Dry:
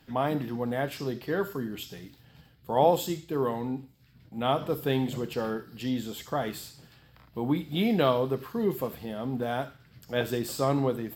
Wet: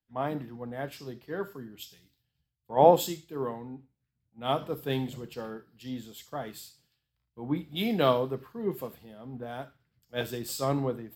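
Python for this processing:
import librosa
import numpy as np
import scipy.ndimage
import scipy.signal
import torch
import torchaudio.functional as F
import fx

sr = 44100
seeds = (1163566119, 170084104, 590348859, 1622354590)

y = fx.band_widen(x, sr, depth_pct=100)
y = F.gain(torch.from_numpy(y), -5.0).numpy()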